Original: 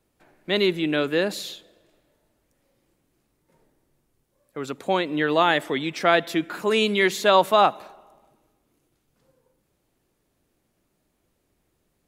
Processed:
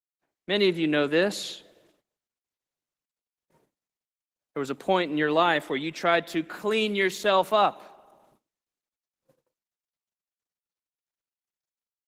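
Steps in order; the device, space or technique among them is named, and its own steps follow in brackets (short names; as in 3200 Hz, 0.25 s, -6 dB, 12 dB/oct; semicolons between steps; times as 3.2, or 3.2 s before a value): video call (HPF 130 Hz 24 dB/oct; AGC gain up to 9.5 dB; gate -53 dBFS, range -34 dB; gain -7 dB; Opus 16 kbps 48000 Hz)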